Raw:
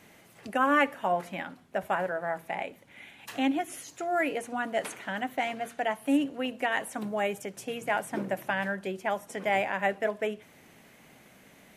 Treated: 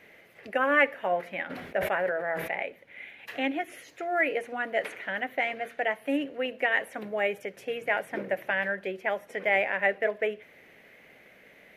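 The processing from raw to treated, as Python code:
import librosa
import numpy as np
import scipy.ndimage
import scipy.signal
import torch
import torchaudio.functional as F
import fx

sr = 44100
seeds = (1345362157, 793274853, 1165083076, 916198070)

y = fx.graphic_eq(x, sr, hz=(125, 250, 500, 1000, 2000, 8000), db=(-4, -3, 9, -5, 11, -11))
y = fx.sustainer(y, sr, db_per_s=50.0, at=(1.49, 2.49), fade=0.02)
y = y * librosa.db_to_amplitude(-3.5)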